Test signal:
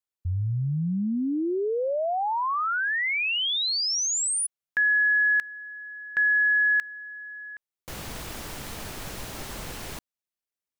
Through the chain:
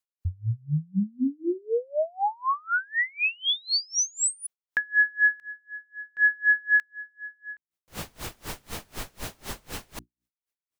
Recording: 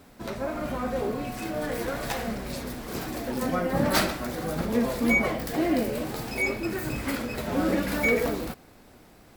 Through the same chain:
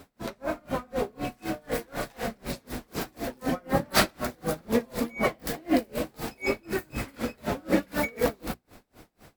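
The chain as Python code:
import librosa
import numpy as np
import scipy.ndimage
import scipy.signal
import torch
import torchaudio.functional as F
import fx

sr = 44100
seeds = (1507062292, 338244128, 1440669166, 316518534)

y = fx.hum_notches(x, sr, base_hz=60, count=6)
y = y * 10.0 ** (-32 * (0.5 - 0.5 * np.cos(2.0 * np.pi * 4.0 * np.arange(len(y)) / sr)) / 20.0)
y = y * 10.0 ** (5.0 / 20.0)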